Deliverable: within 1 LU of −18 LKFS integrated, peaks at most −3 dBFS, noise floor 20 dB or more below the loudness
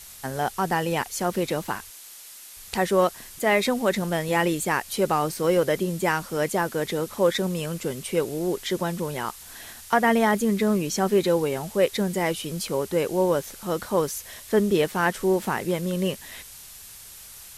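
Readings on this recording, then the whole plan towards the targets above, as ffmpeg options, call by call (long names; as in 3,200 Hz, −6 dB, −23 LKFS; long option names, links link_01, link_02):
background noise floor −44 dBFS; target noise floor −45 dBFS; integrated loudness −25.0 LKFS; sample peak −8.5 dBFS; target loudness −18.0 LKFS
→ -af "afftdn=noise_reduction=6:noise_floor=-44"
-af "volume=7dB,alimiter=limit=-3dB:level=0:latency=1"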